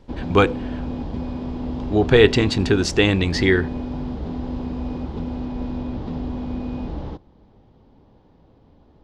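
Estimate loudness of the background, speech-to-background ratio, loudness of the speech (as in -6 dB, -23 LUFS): -29.5 LUFS, 11.0 dB, -18.5 LUFS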